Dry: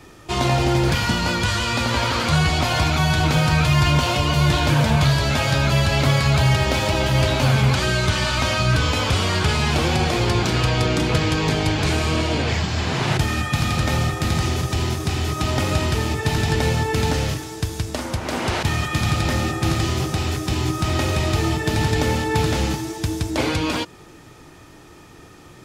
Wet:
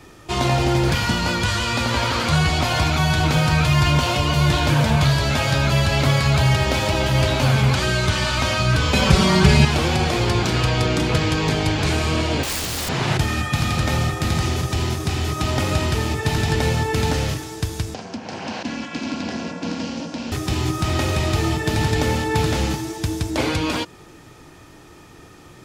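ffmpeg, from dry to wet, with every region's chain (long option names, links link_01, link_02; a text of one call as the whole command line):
ffmpeg -i in.wav -filter_complex "[0:a]asettb=1/sr,asplit=3[link_01][link_02][link_03];[link_01]atrim=end=8.934[link_04];[link_02]atrim=start=8.93:end=9.65,asetpts=PTS-STARTPTS,afade=type=in:duration=0.004:curve=qsin,afade=type=out:start_time=0.716:duration=0.004:curve=qsin,highpass=48,lowshelf=frequency=210:gain=12,aecho=1:1:5.2:0.99,atrim=end_sample=31752[link_05];[link_03]atrim=start=9.646[link_06];[link_04][link_05]acrossfade=duration=0.004:curve1=hsin:curve2=qsin[link_07];[link_07][link_06]acrossfade=duration=0.004:curve1=qsin:curve2=hsin,asettb=1/sr,asplit=3[link_08][link_09][link_10];[link_08]atrim=end=12.434[link_11];[link_09]atrim=start=12.43:end=12.89,asetpts=PTS-STARTPTS,afade=type=in:duration=0.004:curve=qsin,afade=type=out:start_time=0.456:duration=0.004:curve=qsin,aeval=exprs='0.0708*(abs(mod(val(0)/0.0708+3,4)-2)-1)':channel_layout=same,aemphasis=mode=production:type=50fm[link_12];[link_10]atrim=start=12.886[link_13];[link_11][link_12]acrossfade=duration=0.004:curve1=hsin:curve2=qsin[link_14];[link_14][link_13]acrossfade=duration=0.004:curve1=qsin:curve2=hsin,asettb=1/sr,asplit=3[link_15][link_16][link_17];[link_15]atrim=end=17.944[link_18];[link_16]atrim=start=17.94:end=20.32,asetpts=PTS-STARTPTS,afade=type=in:duration=0.004:curve=qsin,afade=type=out:start_time=2.376:duration=0.004:curve=qsin,aeval=exprs='val(0)*sin(2*PI*150*n/s)':channel_layout=same,highpass=frequency=120:width=0.5412,highpass=frequency=120:width=1.3066,equalizer=frequency=420:width_type=q:width=4:gain=-10,equalizer=frequency=1200:width_type=q:width=4:gain=-10,equalizer=frequency=2000:width_type=q:width=4:gain=-7,equalizer=frequency=3600:width_type=q:width=4:gain=-6,lowpass=frequency=6000:width=0.5412,lowpass=frequency=6000:width=1.3066[link_19];[link_17]atrim=start=20.316[link_20];[link_18][link_19]acrossfade=duration=0.004:curve1=hsin:curve2=qsin[link_21];[link_21][link_20]acrossfade=duration=0.004:curve1=qsin:curve2=hsin" out.wav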